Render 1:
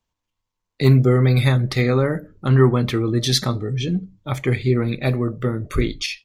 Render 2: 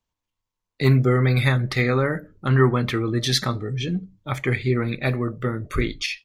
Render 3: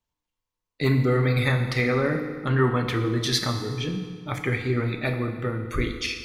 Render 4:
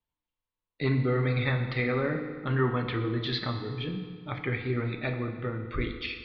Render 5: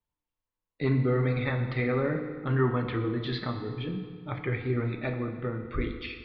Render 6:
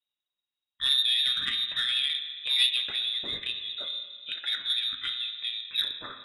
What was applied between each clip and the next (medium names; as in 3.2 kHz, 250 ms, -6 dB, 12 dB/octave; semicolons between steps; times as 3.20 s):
dynamic bell 1.7 kHz, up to +7 dB, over -40 dBFS, Q 1; trim -3.5 dB
FDN reverb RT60 1.8 s, low-frequency decay 0.95×, high-frequency decay 0.8×, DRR 4.5 dB; trim -3 dB
steep low-pass 4.2 kHz 48 dB/octave; trim -5 dB
treble shelf 2.5 kHz -9.5 dB; flange 0.45 Hz, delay 1.8 ms, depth 3 ms, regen -82%; trim +5.5 dB
frequency inversion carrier 3.8 kHz; Chebyshev shaper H 3 -16 dB, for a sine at -12.5 dBFS; trim +3.5 dB